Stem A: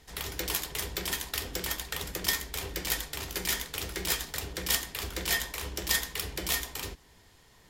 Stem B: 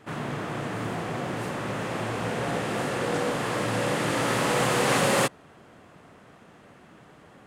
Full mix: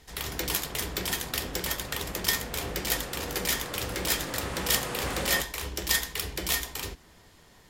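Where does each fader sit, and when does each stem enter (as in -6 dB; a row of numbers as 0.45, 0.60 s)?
+2.0, -11.0 dB; 0.00, 0.15 s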